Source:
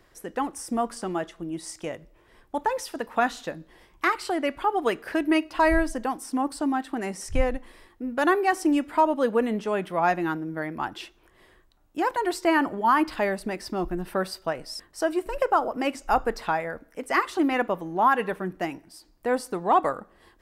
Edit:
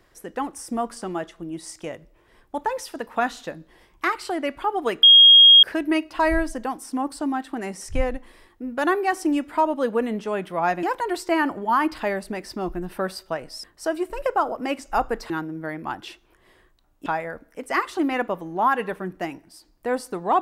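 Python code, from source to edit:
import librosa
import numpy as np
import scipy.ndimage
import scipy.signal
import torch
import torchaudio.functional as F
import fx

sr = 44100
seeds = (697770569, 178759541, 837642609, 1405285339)

y = fx.edit(x, sr, fx.insert_tone(at_s=5.03, length_s=0.6, hz=3260.0, db=-7.0),
    fx.move(start_s=10.23, length_s=1.76, to_s=16.46), tone=tone)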